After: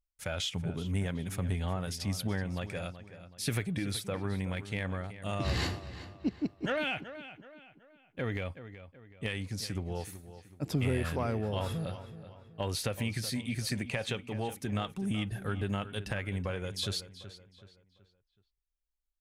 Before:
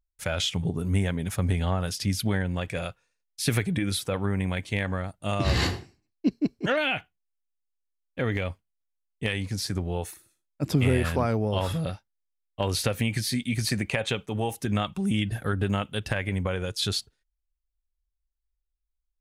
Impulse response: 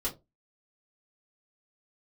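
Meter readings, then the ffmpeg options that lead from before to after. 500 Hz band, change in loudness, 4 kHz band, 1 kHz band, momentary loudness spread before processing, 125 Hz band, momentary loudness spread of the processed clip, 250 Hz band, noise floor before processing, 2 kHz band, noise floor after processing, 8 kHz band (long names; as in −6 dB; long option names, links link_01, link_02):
−7.0 dB, −7.0 dB, −7.0 dB, −7.0 dB, 7 LU, −7.0 dB, 15 LU, −7.0 dB, −80 dBFS, −7.0 dB, −81 dBFS, −6.5 dB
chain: -filter_complex "[0:a]asplit=2[link_01][link_02];[link_02]asoftclip=type=tanh:threshold=-23dB,volume=-9dB[link_03];[link_01][link_03]amix=inputs=2:normalize=0,asplit=2[link_04][link_05];[link_05]adelay=376,lowpass=frequency=4200:poles=1,volume=-13dB,asplit=2[link_06][link_07];[link_07]adelay=376,lowpass=frequency=4200:poles=1,volume=0.41,asplit=2[link_08][link_09];[link_09]adelay=376,lowpass=frequency=4200:poles=1,volume=0.41,asplit=2[link_10][link_11];[link_11]adelay=376,lowpass=frequency=4200:poles=1,volume=0.41[link_12];[link_04][link_06][link_08][link_10][link_12]amix=inputs=5:normalize=0,volume=-9dB"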